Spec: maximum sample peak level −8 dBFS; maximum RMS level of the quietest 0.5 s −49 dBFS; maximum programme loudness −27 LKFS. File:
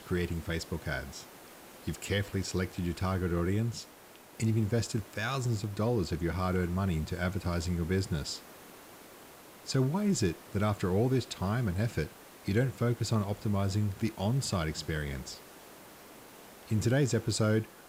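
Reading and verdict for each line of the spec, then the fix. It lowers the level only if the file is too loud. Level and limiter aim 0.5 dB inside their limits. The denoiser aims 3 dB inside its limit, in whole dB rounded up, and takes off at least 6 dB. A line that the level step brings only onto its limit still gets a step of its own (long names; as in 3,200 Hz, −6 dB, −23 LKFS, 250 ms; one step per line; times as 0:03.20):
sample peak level −16.5 dBFS: in spec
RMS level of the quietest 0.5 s −54 dBFS: in spec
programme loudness −32.0 LKFS: in spec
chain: no processing needed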